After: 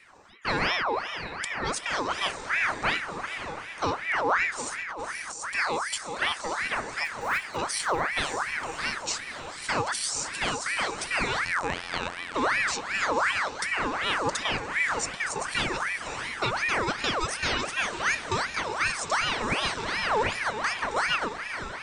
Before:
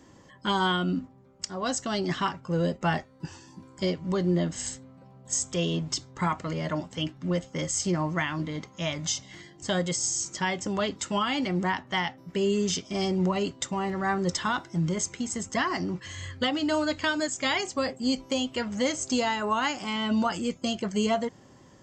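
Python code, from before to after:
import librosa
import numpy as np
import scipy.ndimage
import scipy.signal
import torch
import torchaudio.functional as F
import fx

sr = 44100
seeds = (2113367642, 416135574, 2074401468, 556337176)

y = fx.block_float(x, sr, bits=5, at=(7.05, 7.57))
y = fx.low_shelf(y, sr, hz=220.0, db=3.0)
y = fx.echo_diffused(y, sr, ms=552, feedback_pct=59, wet_db=-8.5)
y = fx.over_compress(y, sr, threshold_db=-33.0, ratio=-1.0, at=(4.77, 5.5))
y = fx.robotise(y, sr, hz=87.5, at=(11.45, 12.34))
y = fx.ring_lfo(y, sr, carrier_hz=1400.0, swing_pct=55, hz=2.7)
y = y * 10.0 ** (1.0 / 20.0)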